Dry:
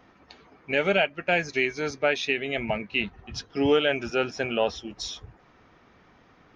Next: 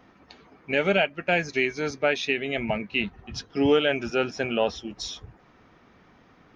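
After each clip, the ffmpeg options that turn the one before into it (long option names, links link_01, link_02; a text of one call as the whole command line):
ffmpeg -i in.wav -af "equalizer=frequency=210:width_type=o:width=1.3:gain=3" out.wav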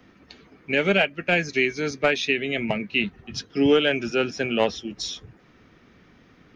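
ffmpeg -i in.wav -filter_complex "[0:a]acrossover=split=100|620|1200[link_01][link_02][link_03][link_04];[link_01]acompressor=threshold=-57dB:ratio=6[link_05];[link_03]acrusher=bits=3:mix=0:aa=0.5[link_06];[link_05][link_02][link_06][link_04]amix=inputs=4:normalize=0,volume=3.5dB" out.wav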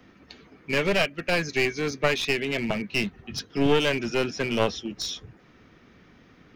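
ffmpeg -i in.wav -af "aeval=exprs='clip(val(0),-1,0.0501)':channel_layout=same" out.wav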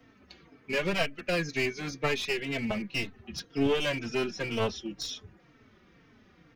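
ffmpeg -i in.wav -filter_complex "[0:a]asplit=2[link_01][link_02];[link_02]adelay=3.9,afreqshift=-2[link_03];[link_01][link_03]amix=inputs=2:normalize=1,volume=-2dB" out.wav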